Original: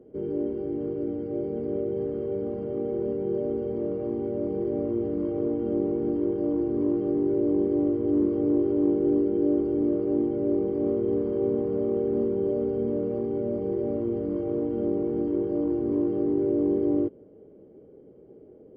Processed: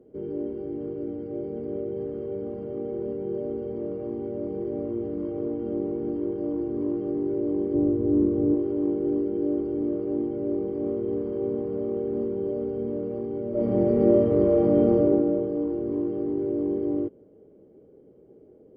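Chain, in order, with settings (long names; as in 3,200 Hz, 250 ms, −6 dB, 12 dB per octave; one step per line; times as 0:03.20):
0:07.74–0:08.55: spectral tilt −2.5 dB per octave
0:13.50–0:14.92: thrown reverb, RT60 2.2 s, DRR −11.5 dB
level −2.5 dB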